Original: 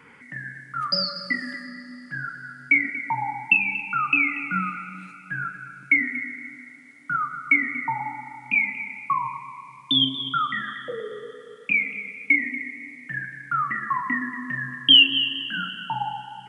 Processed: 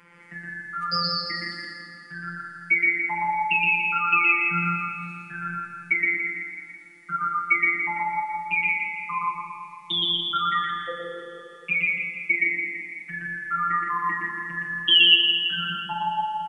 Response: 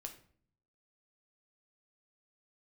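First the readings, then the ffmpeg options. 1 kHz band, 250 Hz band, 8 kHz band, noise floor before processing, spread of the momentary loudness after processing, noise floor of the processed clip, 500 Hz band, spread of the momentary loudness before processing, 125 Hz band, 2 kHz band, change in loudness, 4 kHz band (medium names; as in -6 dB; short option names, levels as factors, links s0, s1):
+2.0 dB, -5.5 dB, no reading, -47 dBFS, 17 LU, -46 dBFS, -1.0 dB, 17 LU, 0.0 dB, 0.0 dB, 0.0 dB, -0.5 dB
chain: -filter_complex "[0:a]asplit=2[s0][s1];[1:a]atrim=start_sample=2205,adelay=119[s2];[s1][s2]afir=irnorm=-1:irlink=0,volume=1.58[s3];[s0][s3]amix=inputs=2:normalize=0,afftfilt=real='hypot(re,im)*cos(PI*b)':imag='0':win_size=1024:overlap=0.75,asplit=2[s4][s5];[s5]aecho=0:1:166|332|498|664|830|996|1162:0.447|0.246|0.135|0.0743|0.0409|0.0225|0.0124[s6];[s4][s6]amix=inputs=2:normalize=0"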